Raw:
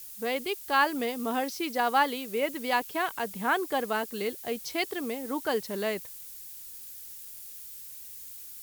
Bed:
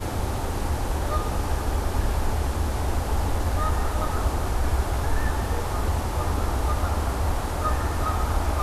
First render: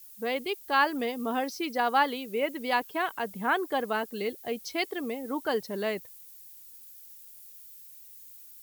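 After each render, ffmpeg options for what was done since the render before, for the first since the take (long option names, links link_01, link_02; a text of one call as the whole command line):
ffmpeg -i in.wav -af "afftdn=noise_reduction=9:noise_floor=-45" out.wav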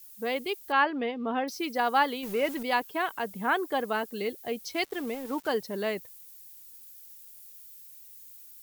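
ffmpeg -i in.wav -filter_complex "[0:a]asettb=1/sr,asplit=3[link_01][link_02][link_03];[link_01]atrim=end=0.724[link_04];[link_02]atrim=start=0.72:end=1.48,asetpts=PTS-STARTPTS,afade=type=in:duration=0.004:curve=qsin,afade=type=out:start_time=0.756:duration=0.004:curve=qsin,lowpass=frequency=3400:width=0.5412,lowpass=frequency=3400:width=1.3066[link_05];[link_03]atrim=start=1.476[link_06];[link_04][link_05]acrossfade=duration=0.004:curve1=hsin:curve2=qsin[link_07];[link_07][link_06]acrossfade=duration=0.004:curve1=qsin:curve2=hsin,asettb=1/sr,asplit=3[link_08][link_09][link_10];[link_08]atrim=end=2.234[link_11];[link_09]atrim=start=2.23:end=2.63,asetpts=PTS-STARTPTS,afade=type=in:duration=0.004:curve=qsin,afade=type=out:start_time=0.396:duration=0.004:curve=qsin,aeval=exprs='val(0)+0.5*0.0158*sgn(val(0))':channel_layout=same[link_12];[link_10]atrim=start=2.626[link_13];[link_11][link_12]acrossfade=duration=0.004:curve1=hsin:curve2=qsin[link_14];[link_14][link_13]acrossfade=duration=0.004:curve1=qsin:curve2=hsin,asettb=1/sr,asplit=3[link_15][link_16][link_17];[link_15]atrim=end=4.744[link_18];[link_16]atrim=start=4.74:end=5.52,asetpts=PTS-STARTPTS,afade=type=in:duration=0.004:curve=qsin,afade=type=out:start_time=0.776:duration=0.004:curve=qsin,aeval=exprs='val(0)*gte(abs(val(0)),0.00841)':channel_layout=same[link_19];[link_17]atrim=start=5.516[link_20];[link_18][link_19]acrossfade=duration=0.004:curve1=hsin:curve2=qsin[link_21];[link_21][link_20]acrossfade=duration=0.004:curve1=qsin:curve2=hsin" out.wav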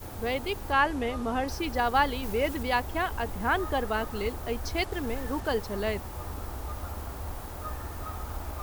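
ffmpeg -i in.wav -i bed.wav -filter_complex "[1:a]volume=-12.5dB[link_01];[0:a][link_01]amix=inputs=2:normalize=0" out.wav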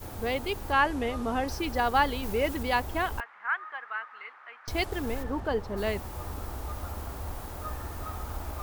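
ffmpeg -i in.wav -filter_complex "[0:a]asettb=1/sr,asplit=3[link_01][link_02][link_03];[link_01]atrim=end=3.204[link_04];[link_02]atrim=start=3.2:end=4.68,asetpts=PTS-STARTPTS,afade=type=in:duration=0.004:curve=qsin,afade=type=out:start_time=1.476:duration=0.004:curve=qsin,asuperpass=centerf=1600:order=4:qfactor=1.5[link_05];[link_03]atrim=start=4.676[link_06];[link_04][link_05]acrossfade=duration=0.004:curve1=hsin:curve2=qsin[link_07];[link_07][link_06]acrossfade=duration=0.004:curve1=qsin:curve2=hsin,asplit=3[link_08][link_09][link_10];[link_08]afade=type=out:start_time=5.22:duration=0.02[link_11];[link_09]lowpass=frequency=1800:poles=1,afade=type=in:start_time=5.22:duration=0.02,afade=type=out:start_time=5.76:duration=0.02[link_12];[link_10]afade=type=in:start_time=5.76:duration=0.02[link_13];[link_11][link_12][link_13]amix=inputs=3:normalize=0" out.wav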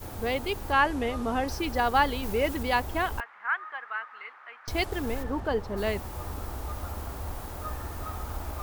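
ffmpeg -i in.wav -af "volume=1dB" out.wav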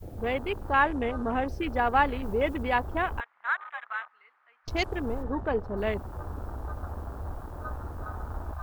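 ffmpeg -i in.wav -af "afwtdn=0.0158" out.wav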